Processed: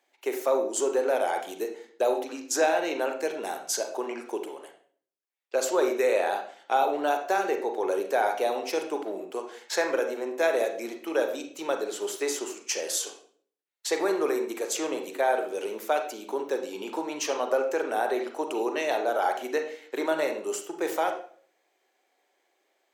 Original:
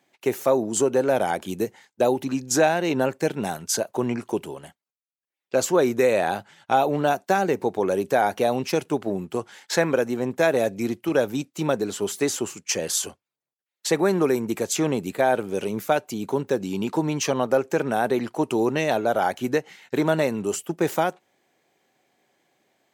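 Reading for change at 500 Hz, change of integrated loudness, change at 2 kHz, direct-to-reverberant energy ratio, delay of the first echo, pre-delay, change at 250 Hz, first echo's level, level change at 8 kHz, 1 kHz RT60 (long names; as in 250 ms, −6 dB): −4.0 dB, −4.5 dB, −3.5 dB, 4.5 dB, no echo audible, 34 ms, −9.5 dB, no echo audible, −4.0 dB, 0.45 s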